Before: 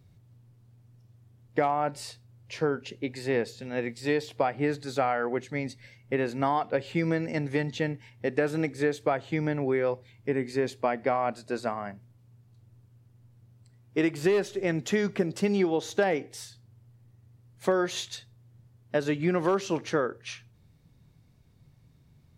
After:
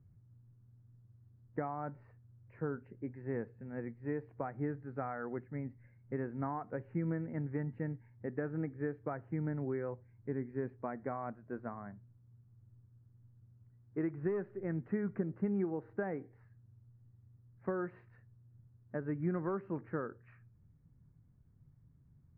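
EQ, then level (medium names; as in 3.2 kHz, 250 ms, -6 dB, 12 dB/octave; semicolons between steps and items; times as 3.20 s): inverse Chebyshev low-pass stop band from 3.2 kHz, stop band 40 dB; distance through air 330 m; peaking EQ 650 Hz -10.5 dB 2.1 oct; -3.5 dB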